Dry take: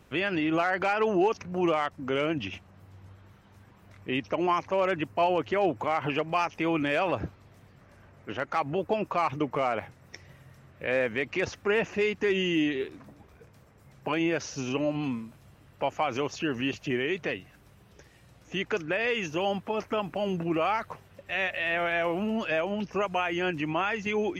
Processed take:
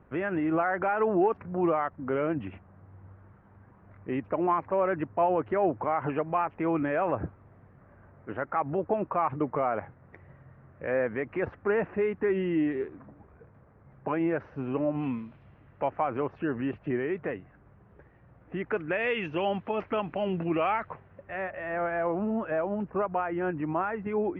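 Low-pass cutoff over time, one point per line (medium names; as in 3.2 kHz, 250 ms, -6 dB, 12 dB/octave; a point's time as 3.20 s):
low-pass 24 dB/octave
14.92 s 1.7 kHz
15.20 s 3.2 kHz
16.05 s 1.7 kHz
18.57 s 1.7 kHz
19.11 s 2.8 kHz
20.61 s 2.8 kHz
21.45 s 1.5 kHz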